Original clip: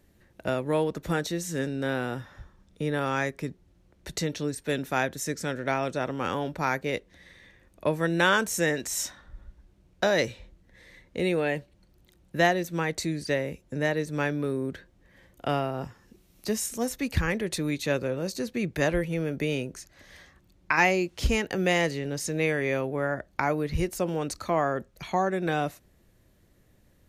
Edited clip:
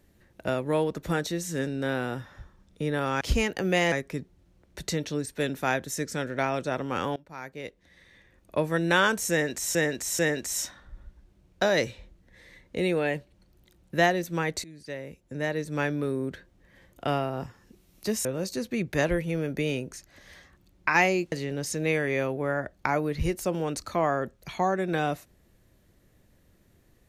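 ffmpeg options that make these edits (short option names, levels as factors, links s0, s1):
-filter_complex "[0:a]asplit=9[s0][s1][s2][s3][s4][s5][s6][s7][s8];[s0]atrim=end=3.212[s9];[s1]atrim=start=21.148:end=21.862[s10];[s2]atrim=start=3.208:end=6.45,asetpts=PTS-STARTPTS,afade=t=out:st=3.238:d=0.004:c=hsin:silence=0.0749894[s11];[s3]atrim=start=6.45:end=9.042,asetpts=PTS-STARTPTS,afade=t=in:d=1.49:silence=0.0749894[s12];[s4]atrim=start=8.598:end=9.042[s13];[s5]atrim=start=8.598:end=13.05,asetpts=PTS-STARTPTS,afade=t=out:st=4.448:d=0.004:c=hsin:silence=0.0944061[s14];[s6]atrim=start=13.05:end=16.662,asetpts=PTS-STARTPTS,afade=t=in:d=1.2:silence=0.0944061[s15];[s7]atrim=start=18.078:end=21.152[s16];[s8]atrim=start=21.858[s17];[s9][s10]acrossfade=d=0.004:c1=hsin:c2=hsin[s18];[s11][s12]concat=n=2:v=0:a=1[s19];[s18][s19]acrossfade=d=0.004:c1=hsin:c2=hsin[s20];[s20][s13]acrossfade=d=0.004:c1=hsin:c2=hsin[s21];[s14][s15]concat=n=2:v=0:a=1[s22];[s21][s22]acrossfade=d=0.004:c1=hsin:c2=hsin[s23];[s23][s16]acrossfade=d=0.004:c1=hsin:c2=hsin[s24];[s24][s17]acrossfade=d=0.004:c1=hsin:c2=hsin"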